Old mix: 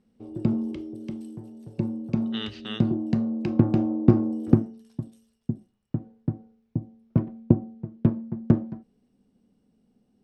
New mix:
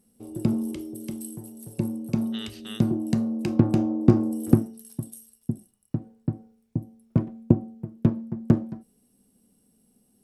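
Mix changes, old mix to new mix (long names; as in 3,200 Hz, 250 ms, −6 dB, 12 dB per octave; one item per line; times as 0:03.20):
speech −7.0 dB
master: remove high-frequency loss of the air 180 metres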